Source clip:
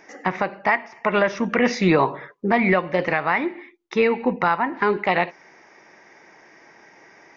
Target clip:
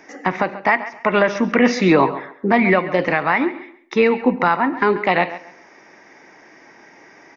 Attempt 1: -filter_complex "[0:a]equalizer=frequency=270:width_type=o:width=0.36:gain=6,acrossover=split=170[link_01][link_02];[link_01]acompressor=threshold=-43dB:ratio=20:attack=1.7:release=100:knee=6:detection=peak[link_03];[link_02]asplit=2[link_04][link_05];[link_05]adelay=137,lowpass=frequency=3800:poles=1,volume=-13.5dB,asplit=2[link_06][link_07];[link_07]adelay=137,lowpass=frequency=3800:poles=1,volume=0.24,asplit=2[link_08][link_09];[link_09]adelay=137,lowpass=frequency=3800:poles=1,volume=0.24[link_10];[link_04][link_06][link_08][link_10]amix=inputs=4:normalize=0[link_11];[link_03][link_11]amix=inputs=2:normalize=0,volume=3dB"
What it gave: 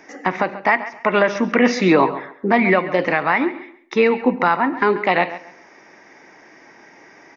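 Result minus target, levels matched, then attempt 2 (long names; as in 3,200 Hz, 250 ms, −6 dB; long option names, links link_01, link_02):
downward compressor: peak gain reduction +11.5 dB
-filter_complex "[0:a]equalizer=frequency=270:width_type=o:width=0.36:gain=6,acrossover=split=170[link_01][link_02];[link_01]acompressor=threshold=-31dB:ratio=20:attack=1.7:release=100:knee=6:detection=peak[link_03];[link_02]asplit=2[link_04][link_05];[link_05]adelay=137,lowpass=frequency=3800:poles=1,volume=-13.5dB,asplit=2[link_06][link_07];[link_07]adelay=137,lowpass=frequency=3800:poles=1,volume=0.24,asplit=2[link_08][link_09];[link_09]adelay=137,lowpass=frequency=3800:poles=1,volume=0.24[link_10];[link_04][link_06][link_08][link_10]amix=inputs=4:normalize=0[link_11];[link_03][link_11]amix=inputs=2:normalize=0,volume=3dB"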